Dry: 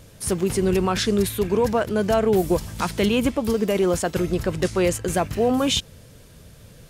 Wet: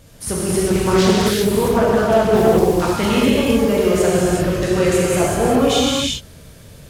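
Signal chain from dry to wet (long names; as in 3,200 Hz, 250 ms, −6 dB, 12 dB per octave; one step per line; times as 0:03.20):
reverb whose tail is shaped and stops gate 420 ms flat, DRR −7 dB
0:00.66–0:02.92: highs frequency-modulated by the lows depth 0.35 ms
level −1.5 dB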